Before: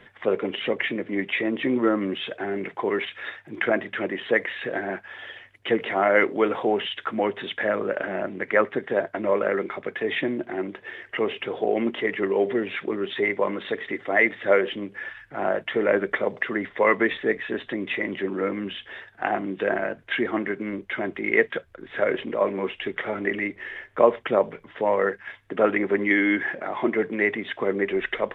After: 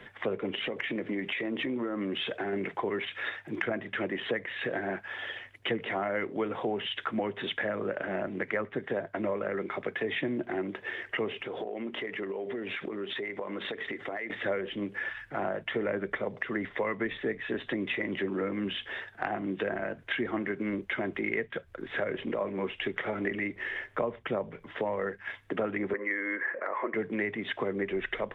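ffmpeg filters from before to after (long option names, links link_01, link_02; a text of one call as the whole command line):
ffmpeg -i in.wav -filter_complex "[0:a]asettb=1/sr,asplit=3[link_01][link_02][link_03];[link_01]atrim=end=0.574[link_04];[link_02]atrim=start=0.57:end=2.53,asetpts=PTS-STARTPTS,afade=type=in:duration=0.004:curve=qsin,afade=type=out:start_time=1.956:duration=0.004:curve=qsin,acompressor=threshold=-28dB:ratio=6:attack=3.2:release=140:knee=1:detection=peak[link_05];[link_03]atrim=start=2.526[link_06];[link_04][link_05]acrossfade=duration=0.004:curve1=hsin:curve2=qsin[link_07];[link_07][link_06]acrossfade=duration=0.004:curve1=qsin:curve2=hsin,asettb=1/sr,asplit=3[link_08][link_09][link_10];[link_08]atrim=end=11.414[link_11];[link_09]atrim=start=11.41:end=14.3,asetpts=PTS-STARTPTS,afade=type=in:duration=0.004:curve=qsin,afade=type=out:start_time=2.886:duration=0.004:curve=qsin,acompressor=threshold=-33dB:ratio=10:attack=3.2:release=140:knee=1:detection=peak[link_12];[link_10]atrim=start=14.296[link_13];[link_11][link_12]acrossfade=duration=0.004:curve1=hsin:curve2=qsin[link_14];[link_14][link_13]acrossfade=duration=0.004:curve1=qsin:curve2=hsin,asettb=1/sr,asplit=3[link_15][link_16][link_17];[link_15]atrim=end=25.934[link_18];[link_16]atrim=start=25.93:end=26.94,asetpts=PTS-STARTPTS,afade=type=in:duration=0.004:curve=qsin,afade=type=out:start_time=1.006:duration=0.004:curve=qsin,highpass=490,equalizer=frequency=510:width_type=q:width=4:gain=9,equalizer=frequency=760:width_type=q:width=4:gain=-9,equalizer=frequency=1100:width_type=q:width=4:gain=6,equalizer=frequency=1900:width_type=q:width=4:gain=5,lowpass=frequency=2100:width=0.5412,lowpass=frequency=2100:width=1.3066[link_19];[link_17]atrim=start=26.936[link_20];[link_18][link_19]acrossfade=duration=0.004:curve1=hsin:curve2=qsin[link_21];[link_21][link_20]acrossfade=duration=0.004:curve1=qsin:curve2=hsin,acrossover=split=160[link_22][link_23];[link_23]acompressor=threshold=-31dB:ratio=6[link_24];[link_22][link_24]amix=inputs=2:normalize=0,volume=1.5dB" out.wav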